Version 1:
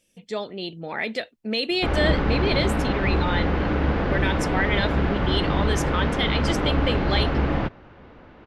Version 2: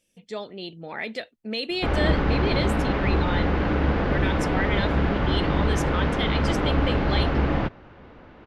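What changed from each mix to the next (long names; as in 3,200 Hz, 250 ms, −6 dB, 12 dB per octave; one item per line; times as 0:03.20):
speech −4.0 dB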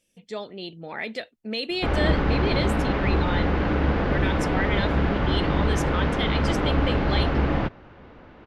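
nothing changed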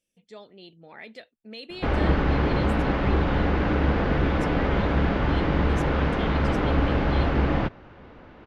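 speech −11.0 dB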